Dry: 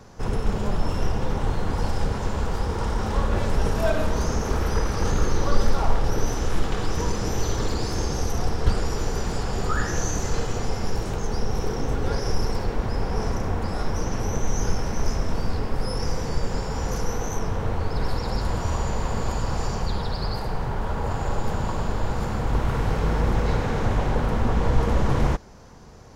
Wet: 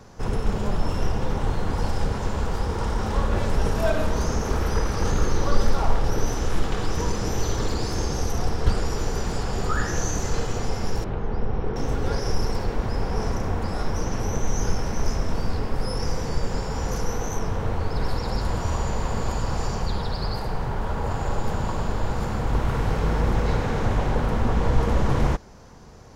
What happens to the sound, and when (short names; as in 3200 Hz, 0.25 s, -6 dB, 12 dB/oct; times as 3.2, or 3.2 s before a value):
11.04–11.76 air absorption 390 m